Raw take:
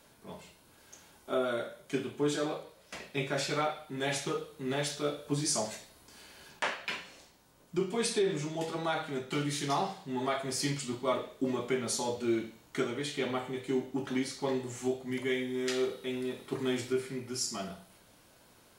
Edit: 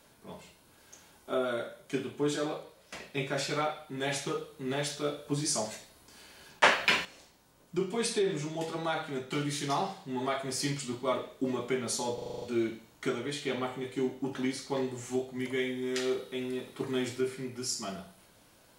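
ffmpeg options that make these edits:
-filter_complex "[0:a]asplit=10[a][b][c][d][e][f][g][h][i][j];[a]atrim=end=6.632[k];[b]atrim=start=6.628:end=7.052,asetpts=PTS-STARTPTS,volume=11dB[l];[c]atrim=start=7.048:end=12.182[m];[d]atrim=start=12.138:end=12.182[n];[e]atrim=start=12.138:end=12.182[o];[f]atrim=start=12.138:end=12.182[p];[g]atrim=start=12.138:end=12.182[q];[h]atrim=start=12.138:end=12.182[r];[i]atrim=start=12.138:end=12.182[s];[j]atrim=start=12.138[t];[k][l]acrossfade=d=0.004:c1=hsin:c2=hsin[u];[u][m]acrossfade=d=0.004:c1=hsin:c2=hsin[v];[v][n]acrossfade=d=0.004:c1=hsin:c2=hsin[w];[w][o]acrossfade=d=0.004:c1=hsin:c2=hsin[x];[x][p]acrossfade=d=0.004:c1=hsin:c2=hsin[y];[y][q]acrossfade=d=0.004:c1=hsin:c2=hsin[z];[z][r]acrossfade=d=0.004:c1=hsin:c2=hsin[aa];[aa][s]acrossfade=d=0.004:c1=hsin:c2=hsin[ab];[ab][t]acrossfade=d=0.004:c1=hsin:c2=hsin"

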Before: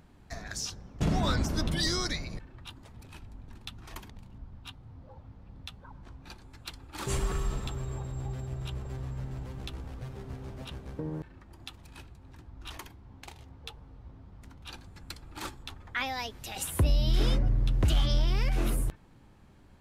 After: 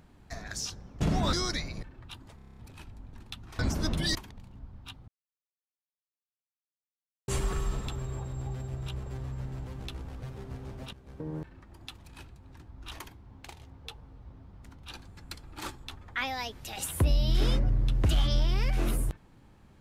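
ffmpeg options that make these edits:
-filter_complex "[0:a]asplit=14[a][b][c][d][e][f][g][h][i][j][k][l][m][n];[a]atrim=end=1.332[o];[b]atrim=start=1.888:end=2.952[p];[c]atrim=start=2.918:end=2.952[q];[d]atrim=start=2.918:end=2.952[r];[e]atrim=start=2.918:end=2.952[s];[f]atrim=start=2.918:end=2.952[t];[g]atrim=start=2.918:end=2.952[u];[h]atrim=start=2.918:end=2.952[v];[i]atrim=start=2.918:end=3.942[w];[j]atrim=start=1.328:end=1.892[x];[k]atrim=start=3.938:end=4.87,asetpts=PTS-STARTPTS,afade=t=out:st=0.928:d=0.004:c=hsin[y];[l]atrim=start=4.87:end=7.07,asetpts=PTS-STARTPTS,volume=0[z];[m]atrim=start=7.07:end=10.72,asetpts=PTS-STARTPTS,afade=t=in:d=0.004:c=hsin,afade=t=out:st=3.646:d=0.004:c=hsin:silence=0.16788[aa];[n]atrim=start=10.72,asetpts=PTS-STARTPTS,afade=t=in:d=0.44:silence=0.16788[ab];[o][p]acrossfade=d=0.004:c1=hsin:c2=hsin[ac];[ac][q]acrossfade=d=0.004:c1=hsin:c2=hsin[ad];[ad][r]acrossfade=d=0.004:c1=hsin:c2=hsin[ae];[ae][s]acrossfade=d=0.004:c1=hsin:c2=hsin[af];[af][t]acrossfade=d=0.004:c1=hsin:c2=hsin[ag];[ag][u]acrossfade=d=0.004:c1=hsin:c2=hsin[ah];[ah][v]acrossfade=d=0.004:c1=hsin:c2=hsin[ai];[ai][w]acrossfade=d=0.004:c1=hsin:c2=hsin[aj];[aj][x]acrossfade=d=0.004:c1=hsin:c2=hsin[ak];[y][z][aa][ab]concat=n=4:v=0:a=1[al];[ak][al]acrossfade=d=0.004:c1=hsin:c2=hsin"

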